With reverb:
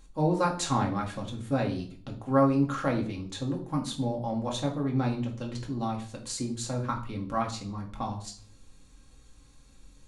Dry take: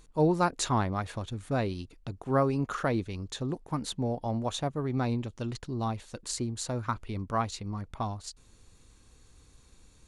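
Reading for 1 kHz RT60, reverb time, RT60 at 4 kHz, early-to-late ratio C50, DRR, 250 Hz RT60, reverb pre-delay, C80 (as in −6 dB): 0.45 s, 0.50 s, 0.45 s, 10.5 dB, −0.5 dB, 0.65 s, 4 ms, 15.0 dB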